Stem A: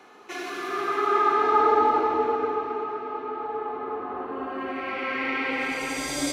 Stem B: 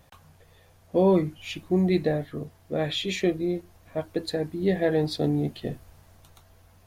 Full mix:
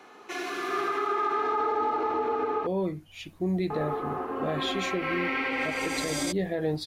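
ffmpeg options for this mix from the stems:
ffmpeg -i stem1.wav -i stem2.wav -filter_complex "[0:a]volume=0dB,asplit=3[link_01][link_02][link_03];[link_01]atrim=end=2.67,asetpts=PTS-STARTPTS,afade=type=out:start_time=2.666:duration=0.004:curve=hsin[link_04];[link_02]atrim=start=2.67:end=3.7,asetpts=PTS-STARTPTS,volume=0[link_05];[link_03]atrim=start=3.7,asetpts=PTS-STARTPTS,afade=type=in:duration=0.004:curve=hsin[link_06];[link_04][link_05][link_06]concat=n=3:v=0:a=1[link_07];[1:a]dynaudnorm=framelen=280:gausssize=11:maxgain=11.5dB,adelay=1700,volume=-11.5dB[link_08];[link_07][link_08]amix=inputs=2:normalize=0,alimiter=limit=-19.5dB:level=0:latency=1:release=80" out.wav

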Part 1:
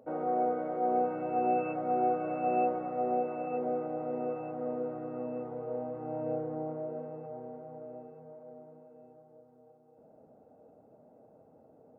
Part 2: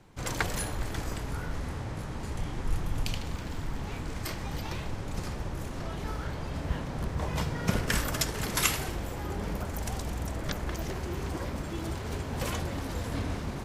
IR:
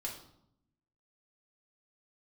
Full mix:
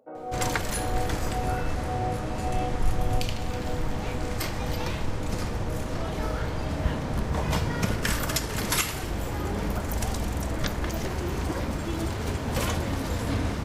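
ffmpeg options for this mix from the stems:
-filter_complex "[0:a]lowshelf=frequency=210:gain=-10,volume=-2.5dB[link_01];[1:a]adelay=150,volume=3dB,asplit=2[link_02][link_03];[link_03]volume=-7.5dB[link_04];[2:a]atrim=start_sample=2205[link_05];[link_04][link_05]afir=irnorm=-1:irlink=0[link_06];[link_01][link_02][link_06]amix=inputs=3:normalize=0,alimiter=limit=-12dB:level=0:latency=1:release=468"

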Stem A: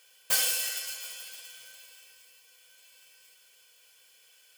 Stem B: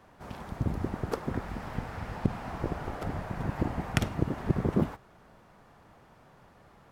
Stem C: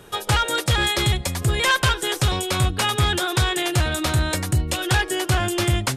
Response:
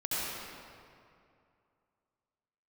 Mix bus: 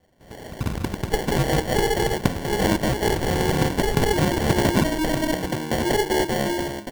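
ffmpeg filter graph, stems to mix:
-filter_complex "[0:a]acrusher=samples=27:mix=1:aa=0.000001,highpass=frequency=340:width=0.5412,highpass=frequency=340:width=1.3066,volume=-15.5dB[link_01];[1:a]volume=-5.5dB[link_02];[2:a]highpass=frequency=190:width=0.5412,highpass=frequency=190:width=1.3066,alimiter=limit=-15dB:level=0:latency=1:release=61,adelay=1000,volume=-7.5dB[link_03];[link_01][link_02][link_03]amix=inputs=3:normalize=0,lowpass=8700,dynaudnorm=framelen=130:gausssize=9:maxgain=12dB,acrusher=samples=35:mix=1:aa=0.000001"

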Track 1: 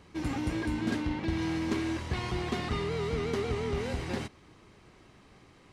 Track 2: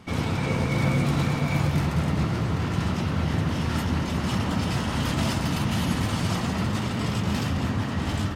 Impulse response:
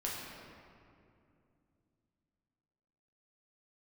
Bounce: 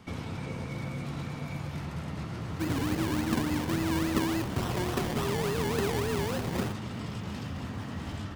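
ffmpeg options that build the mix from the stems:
-filter_complex "[0:a]highpass=frequency=91:width=0.5412,highpass=frequency=91:width=1.3066,acrusher=samples=27:mix=1:aa=0.000001:lfo=1:lforange=16.2:lforate=3.5,adelay=2450,volume=2dB[link_01];[1:a]acrossover=split=560|6000[link_02][link_03][link_04];[link_02]acompressor=threshold=-31dB:ratio=4[link_05];[link_03]acompressor=threshold=-41dB:ratio=4[link_06];[link_04]acompressor=threshold=-58dB:ratio=4[link_07];[link_05][link_06][link_07]amix=inputs=3:normalize=0,volume=-4dB[link_08];[link_01][link_08]amix=inputs=2:normalize=0"

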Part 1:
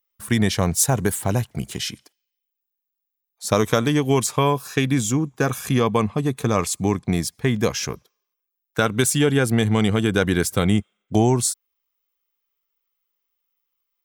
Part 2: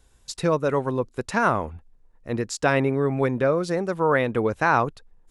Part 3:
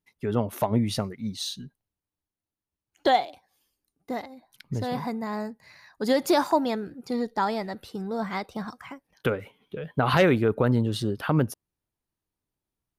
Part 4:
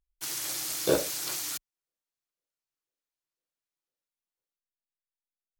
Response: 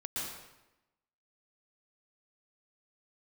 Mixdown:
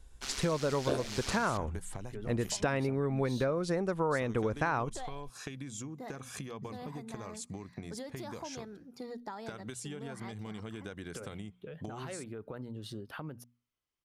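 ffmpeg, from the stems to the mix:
-filter_complex "[0:a]lowpass=frequency=9800:width=0.5412,lowpass=frequency=9800:width=1.3066,acompressor=threshold=-25dB:ratio=6,adelay=700,volume=-7.5dB[link_01];[1:a]lowshelf=frequency=76:gain=11.5,volume=-3.5dB[link_02];[2:a]alimiter=limit=-16.5dB:level=0:latency=1:release=217,adelay=1900,volume=-9.5dB[link_03];[3:a]lowpass=4700,aeval=exprs='val(0)*sin(2*PI*68*n/s)':channel_layout=same,volume=3dB[link_04];[link_01][link_03]amix=inputs=2:normalize=0,bandreject=frequency=60:width_type=h:width=6,bandreject=frequency=120:width_type=h:width=6,bandreject=frequency=180:width_type=h:width=6,bandreject=frequency=240:width_type=h:width=6,acompressor=threshold=-39dB:ratio=6,volume=0dB[link_05];[link_02][link_04][link_05]amix=inputs=3:normalize=0,acompressor=threshold=-27dB:ratio=6"

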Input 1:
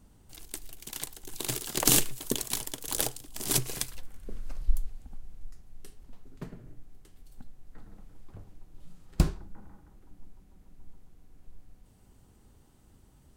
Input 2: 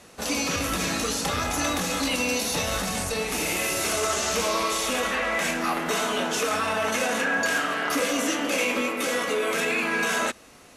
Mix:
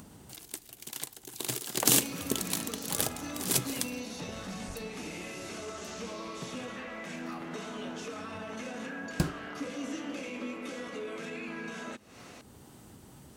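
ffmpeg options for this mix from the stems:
ffmpeg -i stem1.wav -i stem2.wav -filter_complex "[0:a]volume=-1dB[link_01];[1:a]lowpass=7200,acrossover=split=320[link_02][link_03];[link_03]acompressor=threshold=-37dB:ratio=4[link_04];[link_02][link_04]amix=inputs=2:normalize=0,adelay=1650,volume=-6dB[link_05];[link_01][link_05]amix=inputs=2:normalize=0,highpass=120,acompressor=mode=upward:threshold=-40dB:ratio=2.5" out.wav

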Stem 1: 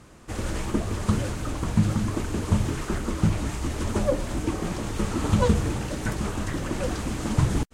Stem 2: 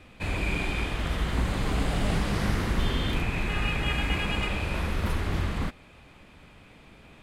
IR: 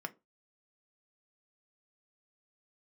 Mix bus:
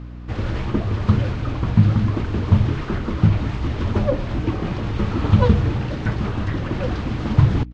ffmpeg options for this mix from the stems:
-filter_complex "[0:a]equalizer=frequency=110:width=1.2:gain=8,aeval=exprs='val(0)+0.0178*(sin(2*PI*60*n/s)+sin(2*PI*2*60*n/s)/2+sin(2*PI*3*60*n/s)/3+sin(2*PI*4*60*n/s)/4+sin(2*PI*5*60*n/s)/5)':channel_layout=same,volume=2dB,asplit=2[link_01][link_02];[link_02]volume=-19.5dB[link_03];[1:a]adelay=800,volume=-18.5dB[link_04];[2:a]atrim=start_sample=2205[link_05];[link_03][link_05]afir=irnorm=-1:irlink=0[link_06];[link_01][link_04][link_06]amix=inputs=3:normalize=0,lowpass=frequency=4400:width=0.5412,lowpass=frequency=4400:width=1.3066"

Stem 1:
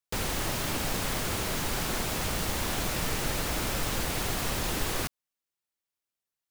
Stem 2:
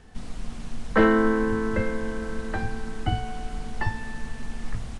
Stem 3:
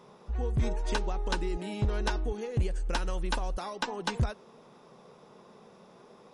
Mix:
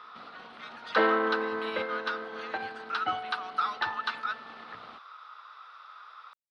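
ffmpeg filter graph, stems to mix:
ffmpeg -i stem1.wav -i stem2.wav -i stem3.wav -filter_complex "[1:a]lowpass=frequency=1100:poles=1,aeval=exprs='0.398*(cos(1*acos(clip(val(0)/0.398,-1,1)))-cos(1*PI/2))+0.0126*(cos(8*acos(clip(val(0)/0.398,-1,1)))-cos(8*PI/2))':channel_layout=same,volume=1.5dB[link_01];[2:a]alimiter=level_in=6dB:limit=-24dB:level=0:latency=1:release=79,volume=-6dB,highpass=frequency=1300:width_type=q:width=14,volume=1.5dB[link_02];[link_01][link_02]amix=inputs=2:normalize=0,highpass=600,highshelf=frequency=5500:width_type=q:width=3:gain=-11" out.wav

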